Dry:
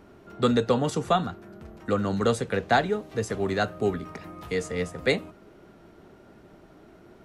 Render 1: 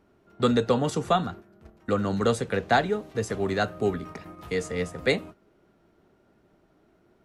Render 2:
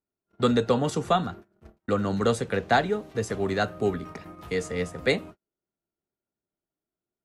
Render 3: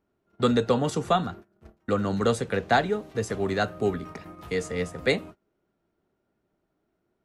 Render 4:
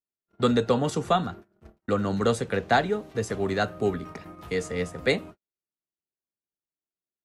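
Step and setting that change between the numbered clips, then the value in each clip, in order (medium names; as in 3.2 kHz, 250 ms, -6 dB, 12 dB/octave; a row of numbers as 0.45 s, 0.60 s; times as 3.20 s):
gate, range: -11 dB, -41 dB, -24 dB, -54 dB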